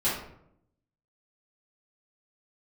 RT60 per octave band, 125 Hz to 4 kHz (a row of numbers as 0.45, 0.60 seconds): 1.1, 0.95, 0.80, 0.65, 0.55, 0.40 seconds